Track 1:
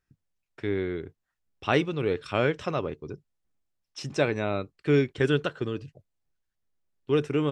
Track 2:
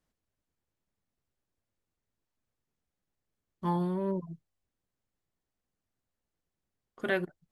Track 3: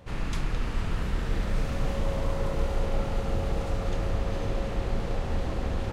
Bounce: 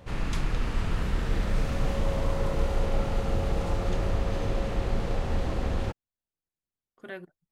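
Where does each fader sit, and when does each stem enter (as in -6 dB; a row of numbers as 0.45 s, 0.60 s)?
mute, -10.5 dB, +1.0 dB; mute, 0.00 s, 0.00 s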